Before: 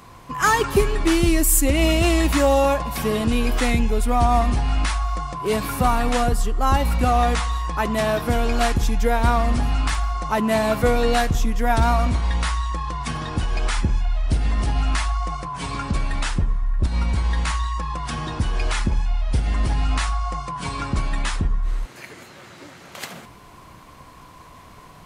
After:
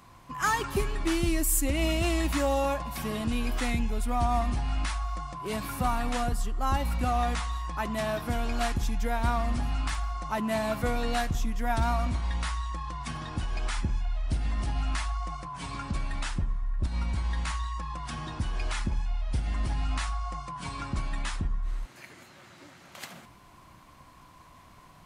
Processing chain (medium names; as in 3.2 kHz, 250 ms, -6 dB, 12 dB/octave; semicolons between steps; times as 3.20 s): peaking EQ 450 Hz -7 dB 0.33 oct; trim -8.5 dB